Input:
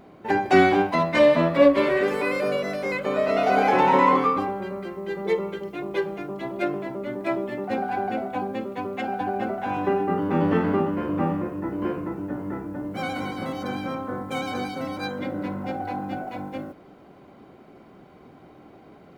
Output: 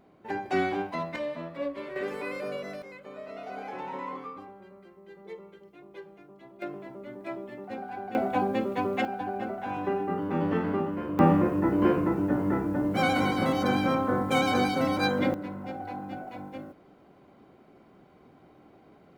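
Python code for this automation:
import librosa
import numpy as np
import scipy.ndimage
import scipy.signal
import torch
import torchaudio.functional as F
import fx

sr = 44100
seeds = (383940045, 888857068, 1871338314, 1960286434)

y = fx.gain(x, sr, db=fx.steps((0.0, -10.5), (1.16, -17.5), (1.96, -10.0), (2.82, -19.0), (6.62, -11.0), (8.15, 2.0), (9.05, -6.0), (11.19, 4.5), (15.34, -7.0)))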